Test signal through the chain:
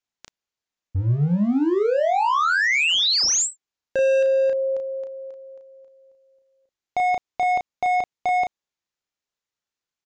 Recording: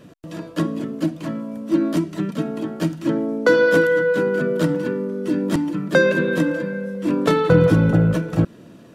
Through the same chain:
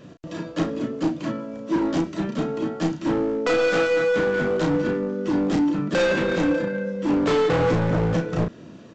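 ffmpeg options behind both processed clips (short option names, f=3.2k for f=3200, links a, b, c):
-filter_complex "[0:a]aresample=16000,asoftclip=type=hard:threshold=-19dB,aresample=44100,asplit=2[a][b];[b]adelay=34,volume=-5dB[c];[a][c]amix=inputs=2:normalize=0"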